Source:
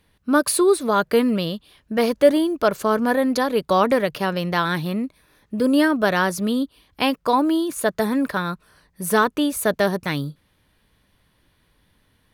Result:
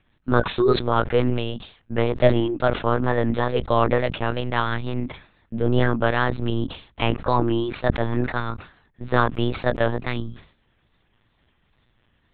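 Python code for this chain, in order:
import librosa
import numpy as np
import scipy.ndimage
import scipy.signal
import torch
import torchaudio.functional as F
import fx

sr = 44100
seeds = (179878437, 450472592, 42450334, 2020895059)

y = fx.lpc_monotone(x, sr, seeds[0], pitch_hz=120.0, order=10)
y = fx.wow_flutter(y, sr, seeds[1], rate_hz=2.1, depth_cents=70.0)
y = fx.sustainer(y, sr, db_per_s=130.0)
y = F.gain(torch.from_numpy(y), -2.0).numpy()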